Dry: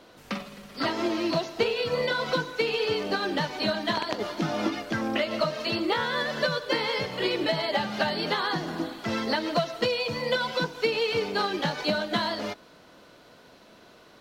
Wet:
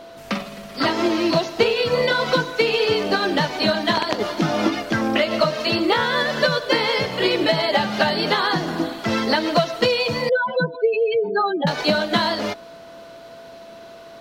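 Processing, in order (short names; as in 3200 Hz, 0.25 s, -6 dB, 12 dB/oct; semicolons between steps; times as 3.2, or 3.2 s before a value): 10.29–11.67 spectral contrast raised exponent 3.1; whine 670 Hz -47 dBFS; gain +7.5 dB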